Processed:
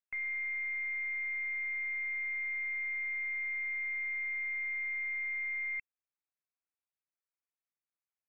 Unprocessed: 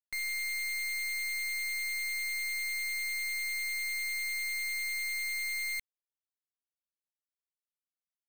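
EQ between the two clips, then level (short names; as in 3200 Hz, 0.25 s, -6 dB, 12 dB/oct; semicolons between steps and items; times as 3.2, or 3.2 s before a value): brick-wall FIR low-pass 2700 Hz; low shelf 430 Hz -8 dB; 0.0 dB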